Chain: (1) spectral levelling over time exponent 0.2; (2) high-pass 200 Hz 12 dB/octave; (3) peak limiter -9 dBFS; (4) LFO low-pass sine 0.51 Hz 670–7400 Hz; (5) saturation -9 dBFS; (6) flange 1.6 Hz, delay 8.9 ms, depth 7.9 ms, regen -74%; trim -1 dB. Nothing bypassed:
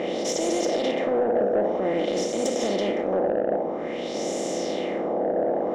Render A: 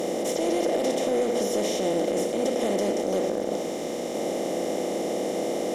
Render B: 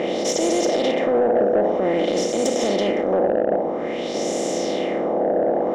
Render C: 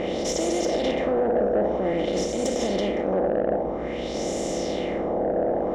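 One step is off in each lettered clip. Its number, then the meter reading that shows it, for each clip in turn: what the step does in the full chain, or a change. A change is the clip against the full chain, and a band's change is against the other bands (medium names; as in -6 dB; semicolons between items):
4, loudness change -1.5 LU; 6, loudness change +4.5 LU; 2, 125 Hz band +4.5 dB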